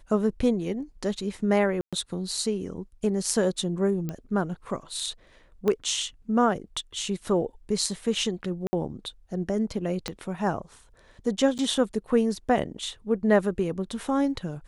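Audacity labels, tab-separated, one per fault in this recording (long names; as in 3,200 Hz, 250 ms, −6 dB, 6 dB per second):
1.810000	1.930000	drop-out 116 ms
4.090000	4.090000	click −19 dBFS
5.680000	5.680000	click −14 dBFS
8.670000	8.730000	drop-out 60 ms
10.080000	10.080000	click −15 dBFS
11.580000	11.590000	drop-out 8.3 ms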